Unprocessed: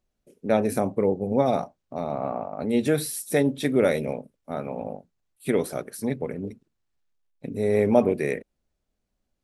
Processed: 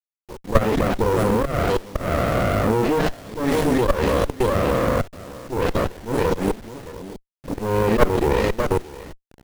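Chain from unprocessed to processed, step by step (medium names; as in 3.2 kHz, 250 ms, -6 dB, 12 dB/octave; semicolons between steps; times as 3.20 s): delay that grows with frequency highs late, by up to 487 ms; high-pass 630 Hz 12 dB/octave; tilt EQ -3.5 dB/octave; on a send: delay 619 ms -15.5 dB; on the sum: level held to a coarse grid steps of 22 dB; slow attack 179 ms; in parallel at +2 dB: compression 8:1, threshold -55 dBFS, peak gain reduction 27 dB; on the sum: companded quantiser 6-bit; spectral replace 6.91–7.27 s, 1–2.7 kHz; loudness maximiser +25.5 dB; sliding maximum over 33 samples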